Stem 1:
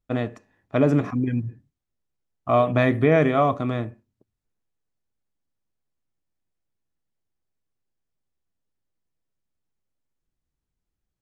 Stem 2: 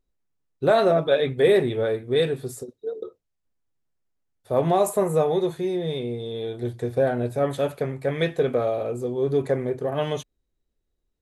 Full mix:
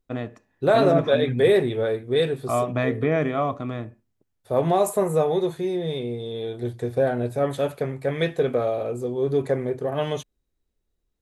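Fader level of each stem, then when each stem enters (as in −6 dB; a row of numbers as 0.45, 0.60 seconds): −4.5, 0.0 decibels; 0.00, 0.00 seconds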